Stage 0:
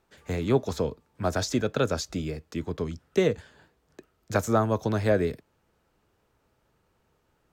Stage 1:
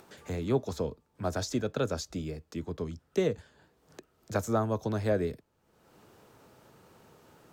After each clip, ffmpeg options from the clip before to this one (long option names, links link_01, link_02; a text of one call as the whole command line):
ffmpeg -i in.wav -filter_complex "[0:a]equalizer=frequency=2100:width_type=o:width=1.5:gain=-3.5,acrossover=split=100[link_01][link_02];[link_02]acompressor=mode=upward:threshold=-37dB:ratio=2.5[link_03];[link_01][link_03]amix=inputs=2:normalize=0,volume=-4.5dB" out.wav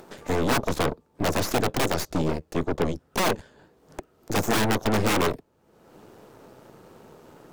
ffmpeg -i in.wav -af "aeval=exprs='(mod(15.8*val(0)+1,2)-1)/15.8':channel_layout=same,aeval=exprs='0.0668*(cos(1*acos(clip(val(0)/0.0668,-1,1)))-cos(1*PI/2))+0.0211*(cos(8*acos(clip(val(0)/0.0668,-1,1)))-cos(8*PI/2))':channel_layout=same,equalizer=frequency=370:width_type=o:width=2.9:gain=7,volume=3dB" out.wav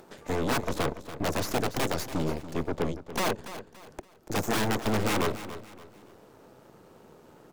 ffmpeg -i in.wav -af "aecho=1:1:285|570|855:0.224|0.0761|0.0259,volume=-4.5dB" out.wav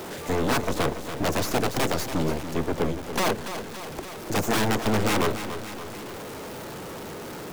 ffmpeg -i in.wav -af "aeval=exprs='val(0)+0.5*0.0178*sgn(val(0))':channel_layout=same,volume=2.5dB" out.wav